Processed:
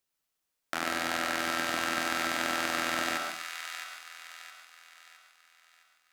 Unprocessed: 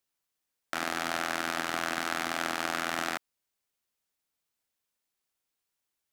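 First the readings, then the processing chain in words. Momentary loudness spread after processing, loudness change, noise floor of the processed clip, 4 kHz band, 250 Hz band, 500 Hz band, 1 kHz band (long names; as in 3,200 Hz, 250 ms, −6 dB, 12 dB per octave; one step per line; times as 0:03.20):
16 LU, +1.0 dB, −83 dBFS, +2.5 dB, +1.5 dB, +1.0 dB, +0.5 dB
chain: on a send: delay with a high-pass on its return 664 ms, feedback 42%, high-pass 1,500 Hz, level −6 dB
on the sum: comb and all-pass reverb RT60 0.5 s, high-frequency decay 0.65×, pre-delay 75 ms, DRR 3.5 dB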